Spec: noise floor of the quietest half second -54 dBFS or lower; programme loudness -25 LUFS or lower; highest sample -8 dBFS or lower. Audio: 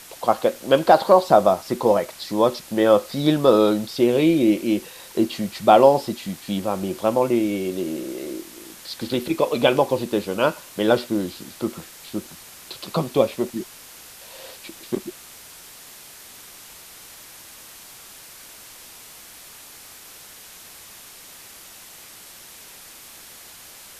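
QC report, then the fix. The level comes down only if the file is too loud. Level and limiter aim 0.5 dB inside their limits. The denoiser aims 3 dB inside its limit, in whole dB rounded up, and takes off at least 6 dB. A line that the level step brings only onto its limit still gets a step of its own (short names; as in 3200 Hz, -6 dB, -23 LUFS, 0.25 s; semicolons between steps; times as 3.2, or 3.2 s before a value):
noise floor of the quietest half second -44 dBFS: fail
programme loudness -20.5 LUFS: fail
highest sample -1.5 dBFS: fail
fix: denoiser 8 dB, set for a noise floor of -44 dBFS; gain -5 dB; limiter -8.5 dBFS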